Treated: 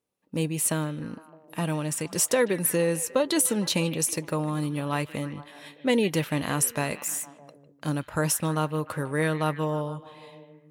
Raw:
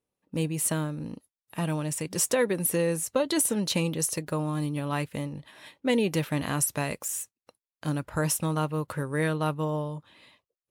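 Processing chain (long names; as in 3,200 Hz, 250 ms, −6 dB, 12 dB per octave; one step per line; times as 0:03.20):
low-shelf EQ 62 Hz −11.5 dB
on a send: echo through a band-pass that steps 153 ms, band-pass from 2,600 Hz, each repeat −0.7 octaves, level −10.5 dB
on the sum: level +2 dB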